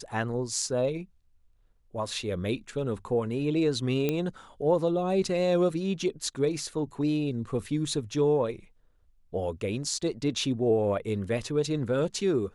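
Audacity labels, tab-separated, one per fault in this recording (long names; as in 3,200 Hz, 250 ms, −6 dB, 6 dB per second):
4.090000	4.090000	click −14 dBFS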